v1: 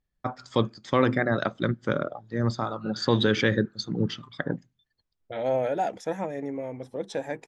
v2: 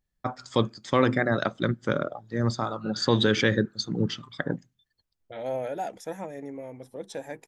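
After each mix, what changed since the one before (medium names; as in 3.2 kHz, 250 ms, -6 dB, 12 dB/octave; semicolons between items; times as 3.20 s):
second voice -5.5 dB; master: remove distance through air 70 m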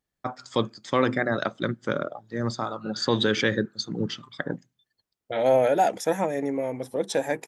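second voice +11.5 dB; master: add high-pass 160 Hz 6 dB/octave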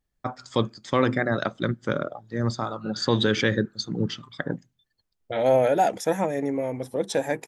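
master: remove high-pass 160 Hz 6 dB/octave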